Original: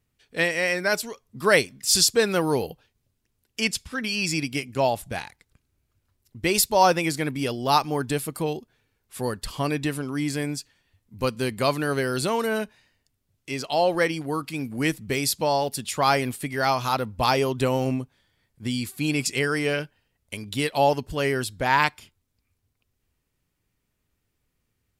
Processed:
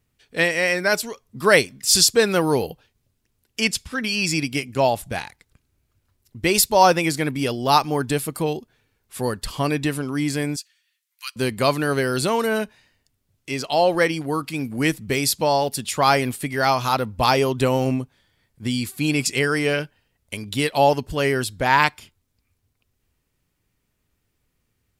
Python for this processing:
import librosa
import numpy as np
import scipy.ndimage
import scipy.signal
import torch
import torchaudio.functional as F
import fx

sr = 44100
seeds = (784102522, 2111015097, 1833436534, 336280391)

y = fx.bessel_highpass(x, sr, hz=2300.0, order=8, at=(10.56, 11.36))
y = y * 10.0 ** (3.5 / 20.0)